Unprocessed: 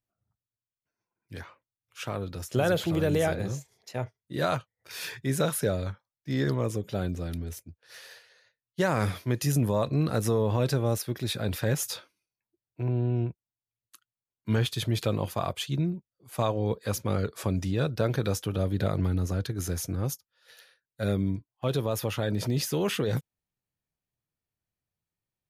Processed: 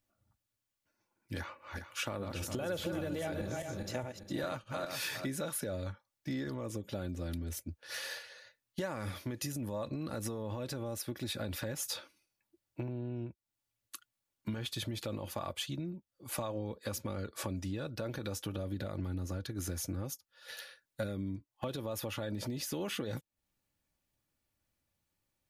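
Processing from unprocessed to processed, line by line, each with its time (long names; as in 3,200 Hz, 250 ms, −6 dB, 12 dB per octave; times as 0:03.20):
0:01.38–0:05.26: feedback delay that plays each chunk backwards 204 ms, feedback 43%, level −6 dB
whole clip: brickwall limiter −19 dBFS; downward compressor 6 to 1, threshold −42 dBFS; comb filter 3.5 ms, depth 43%; level +6.5 dB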